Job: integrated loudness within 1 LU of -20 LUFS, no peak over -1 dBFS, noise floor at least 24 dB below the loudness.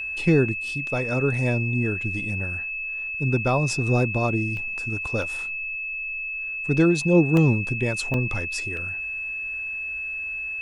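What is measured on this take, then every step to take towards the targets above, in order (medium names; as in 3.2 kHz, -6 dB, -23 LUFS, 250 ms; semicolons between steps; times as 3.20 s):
dropouts 5; longest dropout 1.6 ms; steady tone 2.6 kHz; tone level -28 dBFS; loudness -24.0 LUFS; peak level -7.5 dBFS; loudness target -20.0 LUFS
-> interpolate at 4.57/5.22/7.37/8.14/8.77 s, 1.6 ms; band-stop 2.6 kHz, Q 30; trim +4 dB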